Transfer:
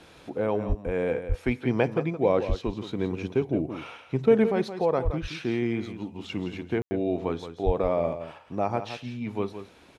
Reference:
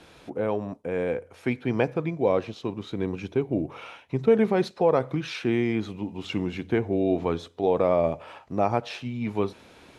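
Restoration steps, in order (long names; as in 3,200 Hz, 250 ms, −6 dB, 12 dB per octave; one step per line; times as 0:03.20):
high-pass at the plosives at 0:00.68/0:01.28/0:02.48/0:05.04/0:07.65
ambience match 0:06.82–0:06.91
echo removal 170 ms −10.5 dB
level 0 dB, from 0:04.44 +3.5 dB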